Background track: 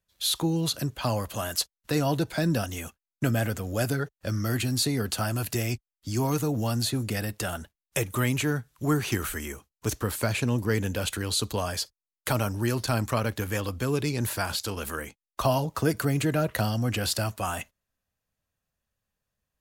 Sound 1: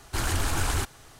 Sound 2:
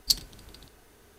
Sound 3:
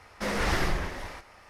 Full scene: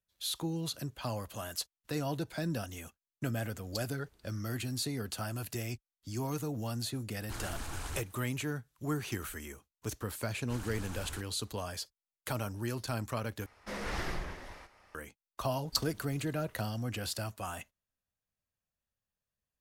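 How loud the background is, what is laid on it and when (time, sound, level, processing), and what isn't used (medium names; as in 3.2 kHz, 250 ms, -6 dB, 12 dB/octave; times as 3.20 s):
background track -9.5 dB
3.65 s: add 2 -18 dB
7.16 s: add 1 -13.5 dB
10.36 s: add 1 -17.5 dB
13.46 s: replace with 3 -9.5 dB
15.65 s: add 2 -8.5 dB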